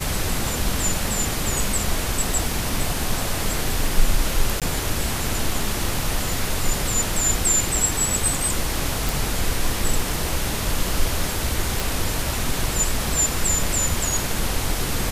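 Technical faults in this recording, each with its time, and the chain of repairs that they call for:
0:04.60–0:04.62: drop-out 17 ms
0:09.09: click
0:11.80: click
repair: click removal
repair the gap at 0:04.60, 17 ms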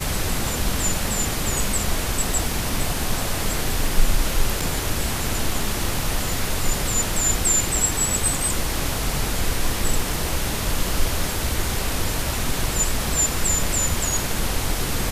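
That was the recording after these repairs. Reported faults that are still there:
none of them is left

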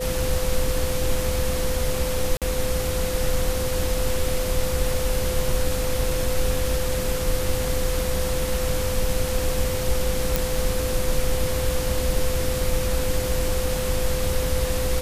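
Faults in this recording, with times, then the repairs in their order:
whistle 510 Hz −27 dBFS
0:02.37–0:02.42: drop-out 47 ms
0:10.36: click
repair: click removal
notch filter 510 Hz, Q 30
repair the gap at 0:02.37, 47 ms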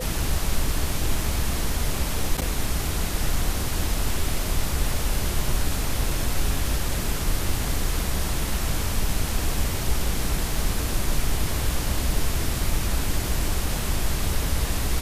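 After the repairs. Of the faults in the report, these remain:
none of them is left

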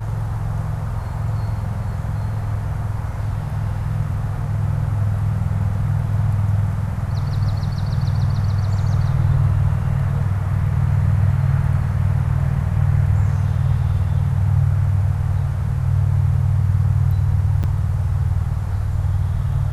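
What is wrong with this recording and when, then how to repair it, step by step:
0:17.63–0:17.64: drop-out 7.8 ms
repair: repair the gap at 0:17.63, 7.8 ms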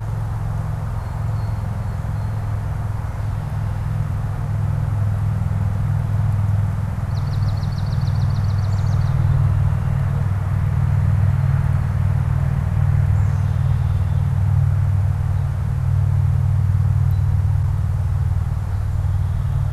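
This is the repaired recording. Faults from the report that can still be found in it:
none of them is left

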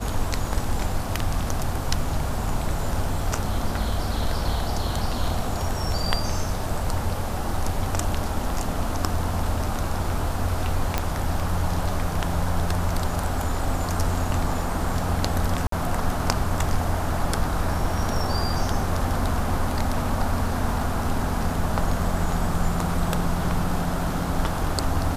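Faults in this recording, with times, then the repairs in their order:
0:10.98: click −7 dBFS
0:15.67–0:15.72: drop-out 53 ms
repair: click removal
repair the gap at 0:15.67, 53 ms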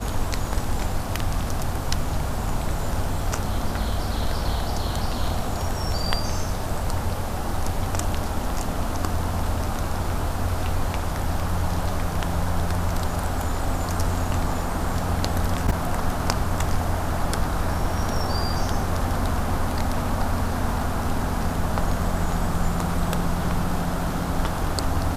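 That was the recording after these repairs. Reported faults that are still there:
none of them is left

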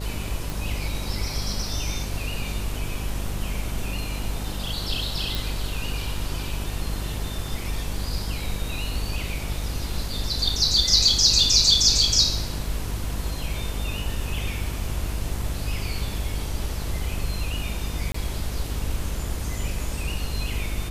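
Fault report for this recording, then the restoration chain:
mains buzz 50 Hz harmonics 13 −31 dBFS
0:00.50: click
0:05.35: click
0:18.12–0:18.14: drop-out 24 ms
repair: click removal
hum removal 50 Hz, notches 13
repair the gap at 0:18.12, 24 ms

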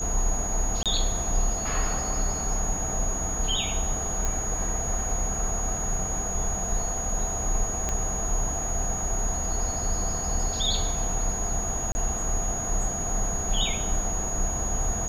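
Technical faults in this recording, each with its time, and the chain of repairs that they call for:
whistle 6,700 Hz −30 dBFS
0:00.83–0:00.86: drop-out 27 ms
0:04.25: click −15 dBFS
0:07.89: click −14 dBFS
0:11.92–0:11.95: drop-out 30 ms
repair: click removal
notch filter 6,700 Hz, Q 30
repair the gap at 0:00.83, 27 ms
repair the gap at 0:11.92, 30 ms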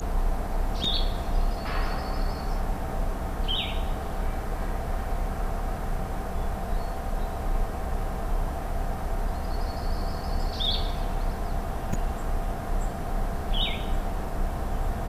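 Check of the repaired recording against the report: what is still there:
0:07.89: click

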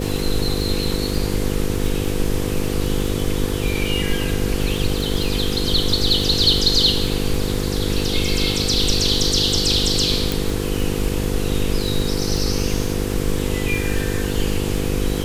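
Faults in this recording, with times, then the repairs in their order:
mains buzz 50 Hz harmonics 10 −24 dBFS
surface crackle 49 per second −25 dBFS
0:10.32: click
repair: click removal
hum removal 50 Hz, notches 10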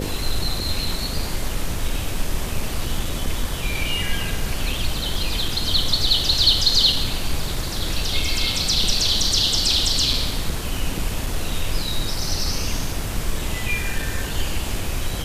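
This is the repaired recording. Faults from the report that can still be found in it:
none of them is left

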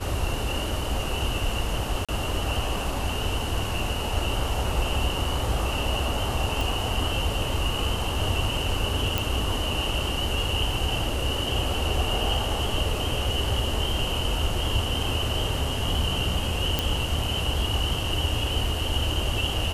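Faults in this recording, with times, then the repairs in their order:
0:02.05–0:02.09: drop-out 36 ms
0:06.61: click
0:09.18: click
0:16.79: click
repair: click removal
repair the gap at 0:02.05, 36 ms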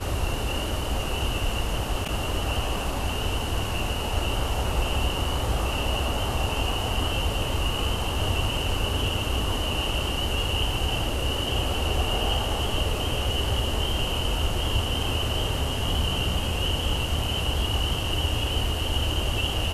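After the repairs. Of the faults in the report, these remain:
none of them is left

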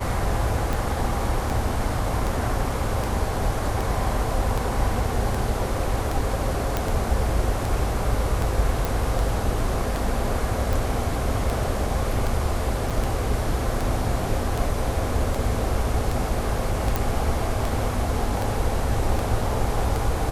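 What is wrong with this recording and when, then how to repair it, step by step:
scratch tick 78 rpm
0:06.77: click
0:08.85: click
0:12.90–0:12.91: drop-out 6.1 ms
0:16.96: click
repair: click removal
repair the gap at 0:12.90, 6.1 ms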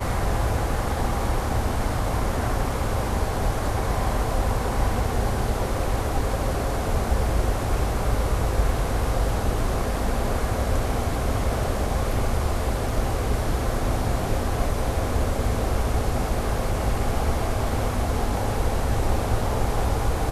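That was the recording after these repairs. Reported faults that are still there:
none of them is left

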